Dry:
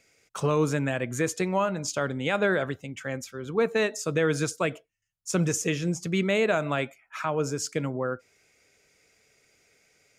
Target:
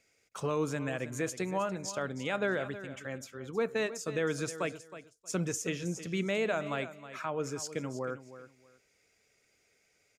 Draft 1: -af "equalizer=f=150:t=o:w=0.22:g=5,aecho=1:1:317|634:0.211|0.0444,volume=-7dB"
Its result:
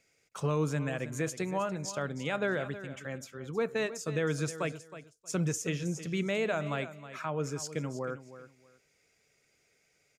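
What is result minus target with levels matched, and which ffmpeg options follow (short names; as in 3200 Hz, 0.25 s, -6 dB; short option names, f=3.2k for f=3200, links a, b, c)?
125 Hz band +4.0 dB
-af "equalizer=f=150:t=o:w=0.22:g=-4,aecho=1:1:317|634:0.211|0.0444,volume=-7dB"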